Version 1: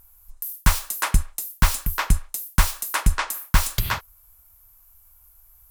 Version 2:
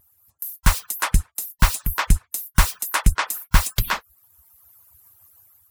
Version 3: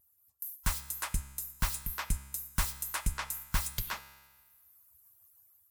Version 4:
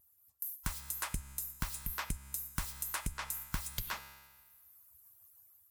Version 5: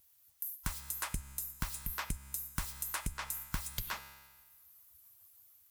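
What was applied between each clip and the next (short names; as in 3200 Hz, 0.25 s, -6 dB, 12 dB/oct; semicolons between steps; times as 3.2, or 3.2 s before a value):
median-filter separation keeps percussive; AGC gain up to 7.5 dB
high shelf 4800 Hz +6.5 dB; resonator 68 Hz, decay 1.3 s, harmonics all, mix 60%; gain -8.5 dB
compressor 10:1, threshold -34 dBFS, peak gain reduction 11.5 dB; gain +1 dB
added noise blue -71 dBFS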